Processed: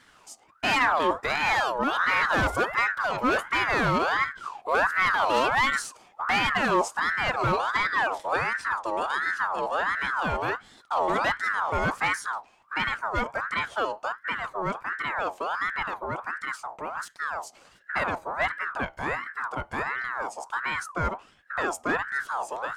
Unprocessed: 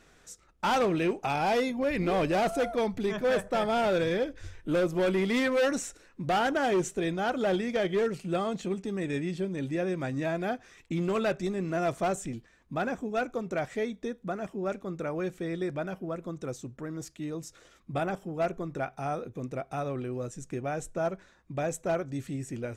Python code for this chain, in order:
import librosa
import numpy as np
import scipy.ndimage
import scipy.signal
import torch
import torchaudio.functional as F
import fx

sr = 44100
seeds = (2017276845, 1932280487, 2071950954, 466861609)

y = fx.octave_divider(x, sr, octaves=1, level_db=1.0)
y = fx.ring_lfo(y, sr, carrier_hz=1200.0, swing_pct=40, hz=1.4)
y = F.gain(torch.from_numpy(y), 4.5).numpy()